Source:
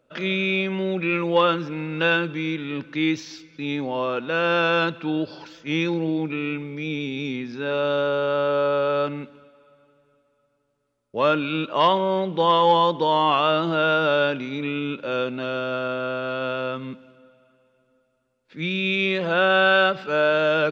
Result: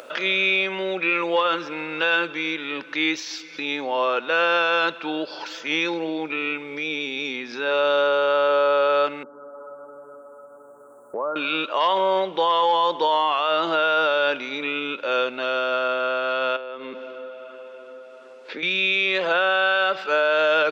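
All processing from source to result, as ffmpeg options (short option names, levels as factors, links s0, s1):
-filter_complex "[0:a]asettb=1/sr,asplit=3[s0][s1][s2];[s0]atrim=end=9.234[s3];[s1]atrim=start=9.23:end=11.36,asetpts=PTS-STARTPTS,afade=t=in:d=0.004:c=qsin,afade=t=out:st=2.126:d=0.004:c=qsin,asuperstop=centerf=3300:order=12:qfactor=0.57,acompressor=threshold=0.0501:ratio=4:attack=3.2:release=140:knee=1:detection=peak,highshelf=f=2100:g=-11[s4];[s2]atrim=start=11.356[s5];[s3][s4]acrossfade=d=0.004:c1=hsin:c2=qsin[s6];[s6][s5]acrossfade=d=0.004:c1=qsin:c2=hsin,asettb=1/sr,asplit=3[s7][s8][s9];[s7]atrim=end=16.564[s10];[s8]atrim=start=16.56:end=18.63,asetpts=PTS-STARTPTS,afade=t=in:d=0.004:c=qsin,afade=t=out:st=2.066:d=0.004:c=qsin,equalizer=f=430:w=1.5:g=8.5,acompressor=threshold=0.0251:ratio=16:attack=3.2:release=140:knee=1:detection=peak,highpass=160,lowpass=4900[s11];[s9]atrim=start=18.626[s12];[s10][s11]acrossfade=d=0.004:c1=hsin:c2=qsin[s13];[s13][s12]acrossfade=d=0.004:c1=qsin:c2=hsin,highpass=540,alimiter=limit=0.141:level=0:latency=1:release=35,acompressor=mode=upward:threshold=0.0282:ratio=2.5,volume=1.88"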